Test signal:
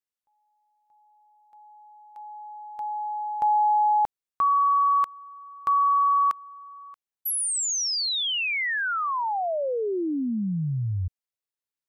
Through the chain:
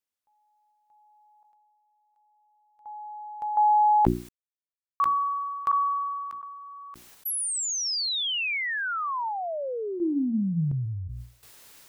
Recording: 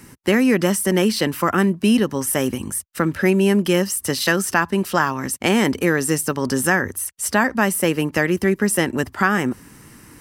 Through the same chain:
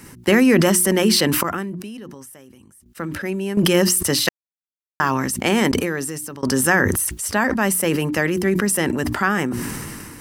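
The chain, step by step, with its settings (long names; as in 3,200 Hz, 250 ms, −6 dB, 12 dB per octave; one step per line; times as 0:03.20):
mains-hum notches 60/120/180/240/300/360 Hz
sample-and-hold tremolo 1.4 Hz, depth 100%
level that may fall only so fast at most 24 dB per second
level +2 dB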